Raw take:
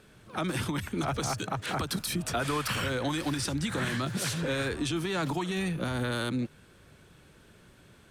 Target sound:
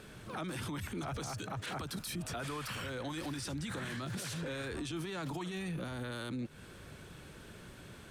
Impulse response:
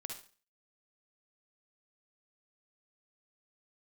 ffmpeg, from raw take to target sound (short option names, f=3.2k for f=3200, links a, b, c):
-af "acompressor=threshold=-37dB:ratio=6,alimiter=level_in=13dB:limit=-24dB:level=0:latency=1:release=22,volume=-13dB,volume=5dB"